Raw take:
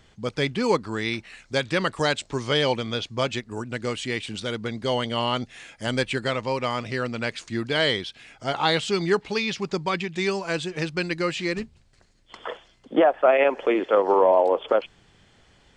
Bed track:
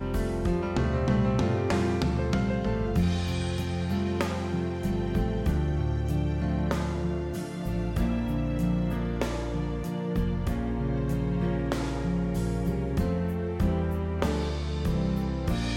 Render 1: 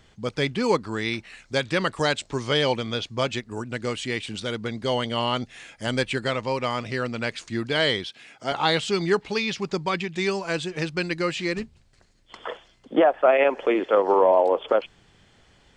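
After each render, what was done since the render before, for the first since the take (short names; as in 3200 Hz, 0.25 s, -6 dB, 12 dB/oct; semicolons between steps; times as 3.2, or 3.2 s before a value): 8.08–8.52 HPF 170 Hz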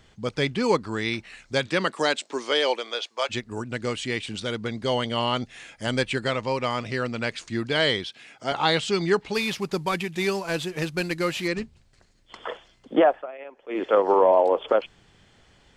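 1.66–3.29 HPF 150 Hz -> 580 Hz 24 dB/oct; 9.34–11.48 CVSD 64 kbps; 13.11–13.83 dip -21 dB, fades 0.15 s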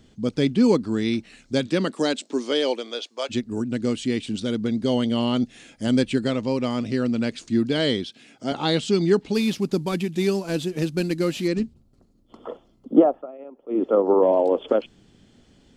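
11.73–14.23 spectral gain 1400–9800 Hz -12 dB; graphic EQ 250/1000/2000 Hz +11/-6/-6 dB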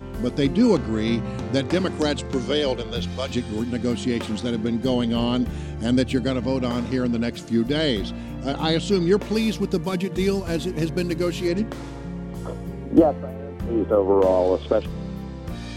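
add bed track -4.5 dB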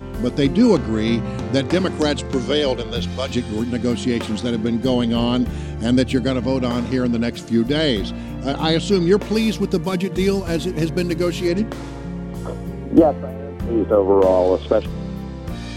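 gain +3.5 dB; limiter -1 dBFS, peak gain reduction 1 dB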